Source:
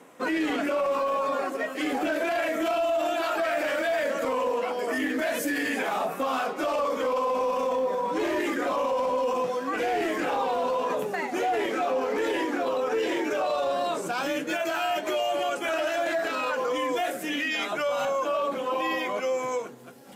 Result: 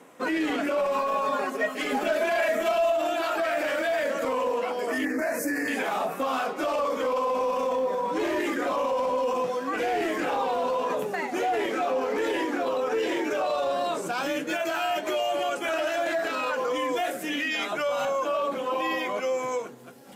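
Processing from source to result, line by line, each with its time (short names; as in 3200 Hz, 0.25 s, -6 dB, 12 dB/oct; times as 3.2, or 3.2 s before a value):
0.77–2.92 comb 4.8 ms, depth 76%
5.05–5.68 Butterworth band-stop 3300 Hz, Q 1.2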